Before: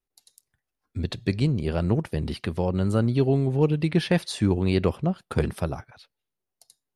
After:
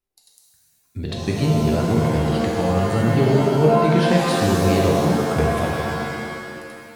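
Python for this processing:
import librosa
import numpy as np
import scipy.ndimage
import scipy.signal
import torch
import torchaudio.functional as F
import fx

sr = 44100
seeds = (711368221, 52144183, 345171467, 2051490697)

y = fx.rev_shimmer(x, sr, seeds[0], rt60_s=2.0, semitones=7, shimmer_db=-2, drr_db=-1.5)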